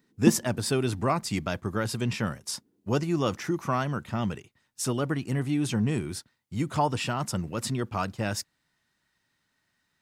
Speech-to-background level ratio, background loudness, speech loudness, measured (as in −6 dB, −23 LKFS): −0.5 dB, −29.0 LKFS, −29.5 LKFS